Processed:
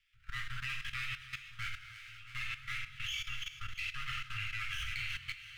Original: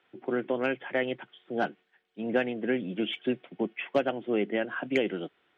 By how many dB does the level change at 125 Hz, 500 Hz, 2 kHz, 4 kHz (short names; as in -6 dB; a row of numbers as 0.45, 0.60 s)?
-2.0 dB, under -40 dB, -3.5 dB, +0.5 dB